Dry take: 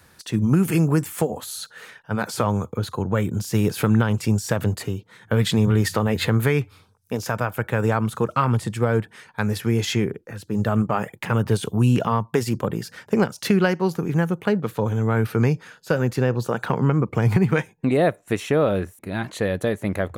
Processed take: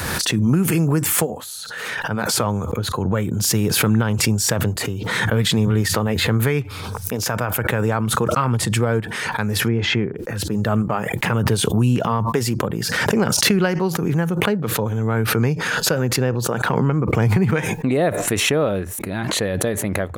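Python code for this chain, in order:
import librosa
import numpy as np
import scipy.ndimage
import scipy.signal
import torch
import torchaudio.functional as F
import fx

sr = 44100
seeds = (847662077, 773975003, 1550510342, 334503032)

y = fx.lowpass(x, sr, hz=2300.0, slope=12, at=(9.68, 10.16))
y = fx.pre_swell(y, sr, db_per_s=24.0)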